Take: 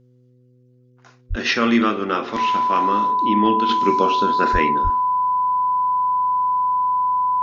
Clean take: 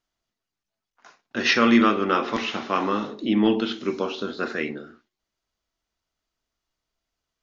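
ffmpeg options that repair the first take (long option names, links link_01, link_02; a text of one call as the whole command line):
ffmpeg -i in.wav -filter_complex "[0:a]bandreject=frequency=124.9:width_type=h:width=4,bandreject=frequency=249.8:width_type=h:width=4,bandreject=frequency=374.7:width_type=h:width=4,bandreject=frequency=499.6:width_type=h:width=4,bandreject=frequency=1000:width=30,asplit=3[link_01][link_02][link_03];[link_01]afade=type=out:start_time=1.29:duration=0.02[link_04];[link_02]highpass=frequency=140:width=0.5412,highpass=frequency=140:width=1.3066,afade=type=in:start_time=1.29:duration=0.02,afade=type=out:start_time=1.41:duration=0.02[link_05];[link_03]afade=type=in:start_time=1.41:duration=0.02[link_06];[link_04][link_05][link_06]amix=inputs=3:normalize=0,asplit=3[link_07][link_08][link_09];[link_07]afade=type=out:start_time=4.52:duration=0.02[link_10];[link_08]highpass=frequency=140:width=0.5412,highpass=frequency=140:width=1.3066,afade=type=in:start_time=4.52:duration=0.02,afade=type=out:start_time=4.64:duration=0.02[link_11];[link_09]afade=type=in:start_time=4.64:duration=0.02[link_12];[link_10][link_11][link_12]amix=inputs=3:normalize=0,asplit=3[link_13][link_14][link_15];[link_13]afade=type=out:start_time=4.83:duration=0.02[link_16];[link_14]highpass=frequency=140:width=0.5412,highpass=frequency=140:width=1.3066,afade=type=in:start_time=4.83:duration=0.02,afade=type=out:start_time=4.95:duration=0.02[link_17];[link_15]afade=type=in:start_time=4.95:duration=0.02[link_18];[link_16][link_17][link_18]amix=inputs=3:normalize=0,asetnsamples=nb_out_samples=441:pad=0,asendcmd='3.69 volume volume -6dB',volume=0dB" out.wav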